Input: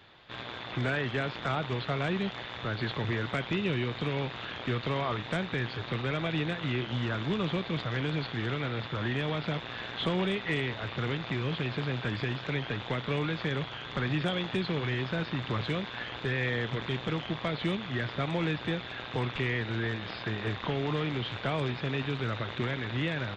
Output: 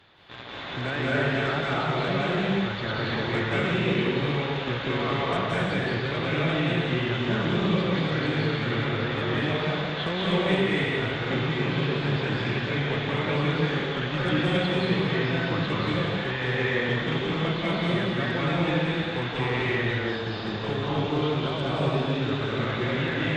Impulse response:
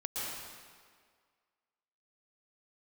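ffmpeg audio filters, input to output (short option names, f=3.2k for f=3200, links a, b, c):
-filter_complex "[0:a]asettb=1/sr,asplit=3[a][b][c];[a]atrim=end=19.754[d];[b]atrim=start=19.75:end=22.32,asetpts=PTS-STARTPTS,afade=t=in:d=0.004:c=qsin,afade=t=out:st=2.566:d=0.004:c=qsin,equalizer=f=2k:w=2:g=-7.5[e];[c]atrim=start=22.316[f];[d][e]acrossfade=d=0.004:c1=hsin:c2=qsin[g];[g][f]acrossfade=d=0.004:c1=qsin:c2=hsin[h];[1:a]atrim=start_sample=2205,afade=t=out:st=0.43:d=0.01,atrim=end_sample=19404,asetrate=29106,aresample=44100[i];[h][i]afir=irnorm=-1:irlink=0"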